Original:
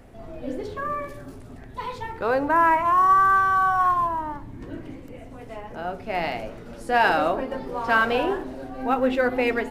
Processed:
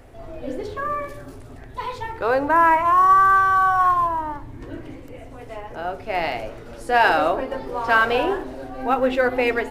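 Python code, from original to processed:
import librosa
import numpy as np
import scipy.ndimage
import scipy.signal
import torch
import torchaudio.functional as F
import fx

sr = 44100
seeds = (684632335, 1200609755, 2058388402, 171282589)

y = fx.peak_eq(x, sr, hz=200.0, db=-11.0, octaves=0.5)
y = y * librosa.db_to_amplitude(3.0)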